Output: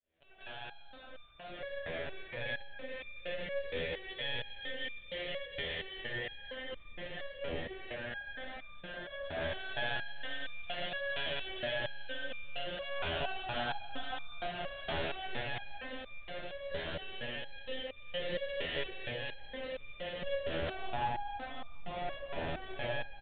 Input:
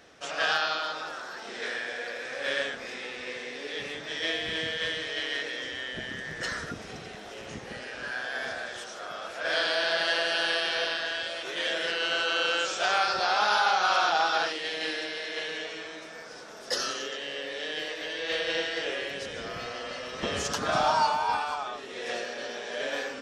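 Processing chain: fade-in on the opening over 2.32 s; bass shelf 200 Hz -6 dB; compression 2:1, threshold -38 dBFS, peak gain reduction 10 dB; distance through air 230 m; static phaser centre 300 Hz, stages 6; bouncing-ball echo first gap 740 ms, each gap 0.9×, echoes 5; on a send at -6 dB: reverberation RT60 0.90 s, pre-delay 5 ms; on the sum: monotone LPC vocoder at 8 kHz 140 Hz; resonator arpeggio 4.3 Hz 82–1200 Hz; trim +13 dB

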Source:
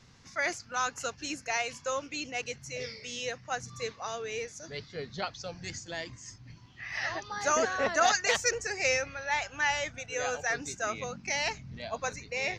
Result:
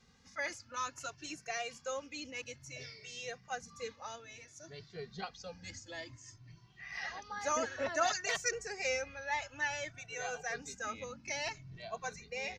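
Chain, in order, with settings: 4.15–4.80 s: compression 2:1, threshold -40 dBFS, peak gain reduction 5 dB; endless flanger 2.1 ms +0.57 Hz; trim -4.5 dB

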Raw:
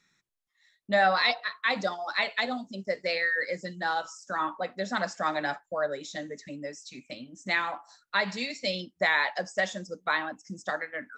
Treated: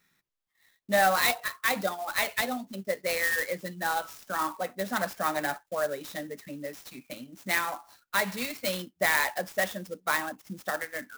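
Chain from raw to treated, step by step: sampling jitter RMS 0.036 ms

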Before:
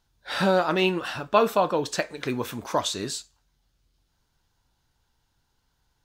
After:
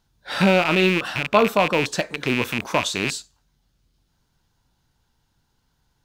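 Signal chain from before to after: rattle on loud lows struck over -40 dBFS, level -14 dBFS; peaking EQ 180 Hz +5.5 dB 1.5 oct; trim +2 dB

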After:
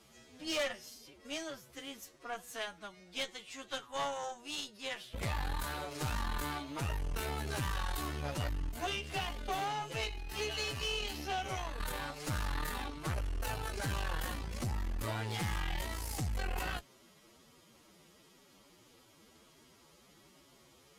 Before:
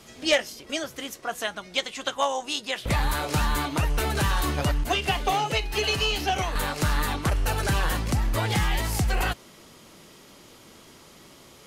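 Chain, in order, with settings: time stretch by phase-locked vocoder 1.8×; valve stage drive 22 dB, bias 0.7; trim -7.5 dB

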